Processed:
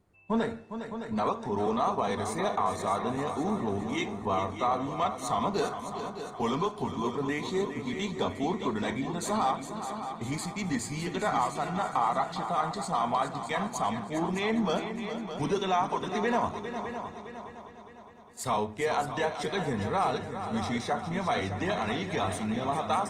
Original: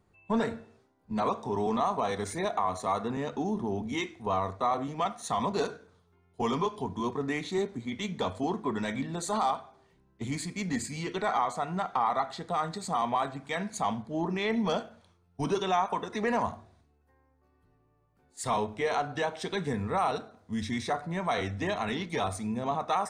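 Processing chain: multi-head delay 204 ms, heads second and third, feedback 49%, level -10 dB; Opus 24 kbps 48 kHz

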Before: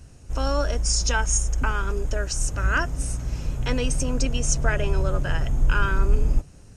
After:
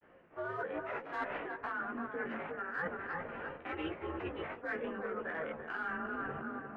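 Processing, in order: tracing distortion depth 0.11 ms; mistuned SSB -170 Hz 400–2100 Hz; tape echo 346 ms, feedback 53%, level -7 dB, low-pass 1.2 kHz; in parallel at -11.5 dB: hard clipper -22 dBFS, distortion -15 dB; on the sum: formant shift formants +3 st; granulator 100 ms, grains 20 per s, spray 23 ms, pitch spread up and down by 0 st; chorus voices 4, 0.48 Hz, delay 17 ms, depth 4.3 ms; reverse; compression 6:1, threshold -40 dBFS, peak gain reduction 17 dB; reverse; trim +3.5 dB

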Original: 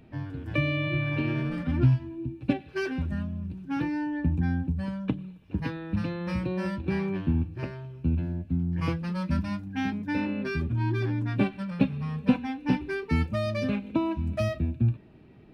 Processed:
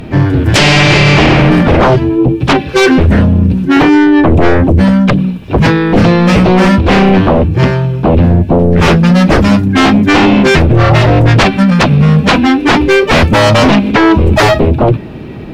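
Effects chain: sine folder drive 19 dB, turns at -8.5 dBFS; harmony voices +5 st -11 dB; trim +5 dB

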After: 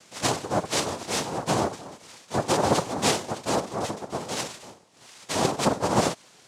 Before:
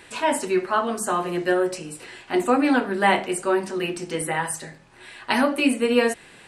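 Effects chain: harmonic-percussive split percussive -6 dB; noise-vocoded speech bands 2; trim -3.5 dB

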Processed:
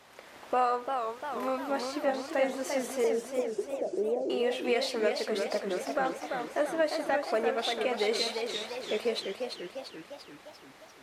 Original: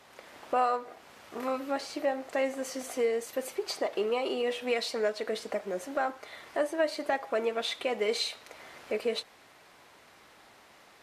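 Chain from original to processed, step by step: 3.04–4.30 s: inverse Chebyshev low-pass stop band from 1.3 kHz, stop band 40 dB; modulated delay 346 ms, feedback 57%, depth 156 cents, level -5.5 dB

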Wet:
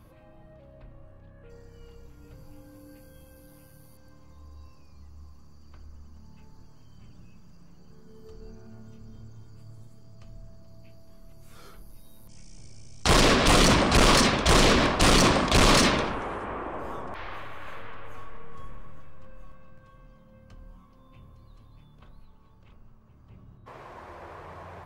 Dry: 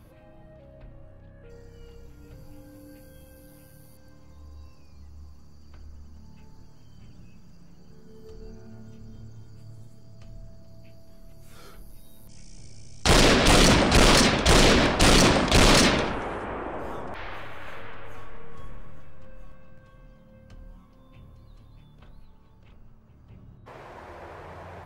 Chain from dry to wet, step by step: peaking EQ 1.1 kHz +5.5 dB 0.27 oct; trim -2 dB

